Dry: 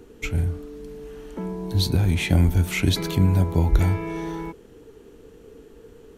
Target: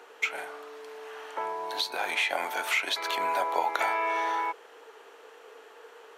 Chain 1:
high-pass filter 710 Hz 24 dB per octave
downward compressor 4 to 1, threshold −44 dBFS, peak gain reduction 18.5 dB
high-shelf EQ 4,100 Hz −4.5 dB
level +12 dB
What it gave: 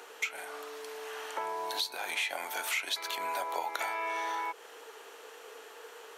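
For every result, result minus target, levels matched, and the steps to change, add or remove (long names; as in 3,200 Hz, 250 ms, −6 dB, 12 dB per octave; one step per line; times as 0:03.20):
downward compressor: peak gain reduction +8.5 dB; 8,000 Hz band +7.0 dB
change: downward compressor 4 to 1, threshold −32.5 dBFS, peak gain reduction 10 dB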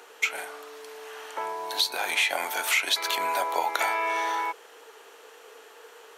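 8,000 Hz band +6.0 dB
change: high-shelf EQ 4,100 Hz −16 dB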